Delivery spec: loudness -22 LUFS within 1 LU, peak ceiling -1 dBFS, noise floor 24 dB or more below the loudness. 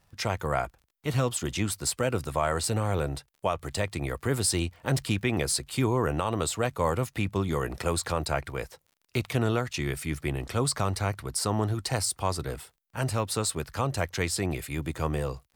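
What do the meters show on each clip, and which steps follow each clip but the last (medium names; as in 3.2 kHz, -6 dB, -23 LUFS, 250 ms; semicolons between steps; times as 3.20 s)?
tick rate 30 per s; loudness -29.5 LUFS; peak level -13.5 dBFS; loudness target -22.0 LUFS
-> de-click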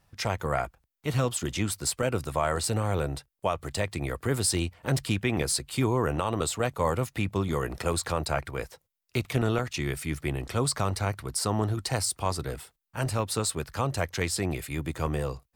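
tick rate 0.96 per s; loudness -29.5 LUFS; peak level -13.0 dBFS; loudness target -22.0 LUFS
-> trim +7.5 dB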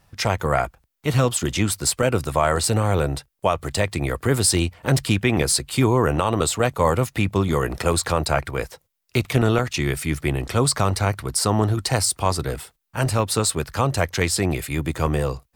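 loudness -22.0 LUFS; peak level -5.5 dBFS; noise floor -70 dBFS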